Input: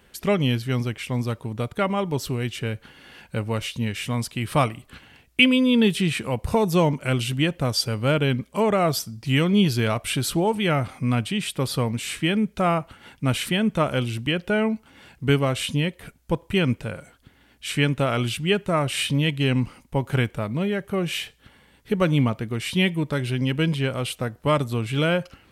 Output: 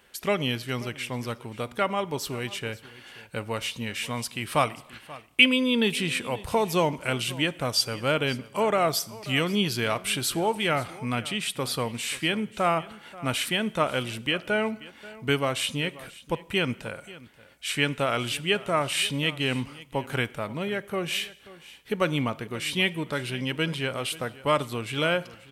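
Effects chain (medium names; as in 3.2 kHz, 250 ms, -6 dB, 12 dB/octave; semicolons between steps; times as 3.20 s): bass shelf 290 Hz -12 dB; delay 534 ms -19 dB; on a send at -19.5 dB: reverberation, pre-delay 3 ms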